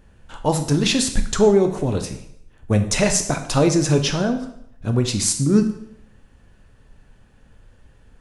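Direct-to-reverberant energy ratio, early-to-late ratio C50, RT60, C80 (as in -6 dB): 5.5 dB, 10.0 dB, 0.75 s, 13.0 dB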